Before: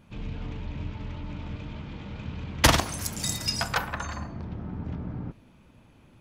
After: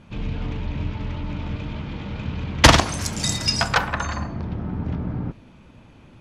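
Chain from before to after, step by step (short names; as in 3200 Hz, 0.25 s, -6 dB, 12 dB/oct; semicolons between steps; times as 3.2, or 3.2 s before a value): LPF 7300 Hz 12 dB/oct; gain +7.5 dB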